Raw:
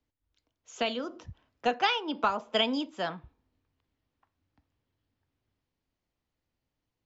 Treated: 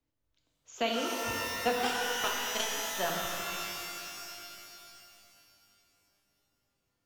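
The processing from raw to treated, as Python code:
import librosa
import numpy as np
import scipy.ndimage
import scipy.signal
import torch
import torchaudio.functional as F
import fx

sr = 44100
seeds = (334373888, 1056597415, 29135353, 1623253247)

y = fx.power_curve(x, sr, exponent=3.0, at=(1.81, 2.97))
y = fx.rev_shimmer(y, sr, seeds[0], rt60_s=2.8, semitones=12, shimmer_db=-2, drr_db=-0.5)
y = y * 10.0 ** (-2.5 / 20.0)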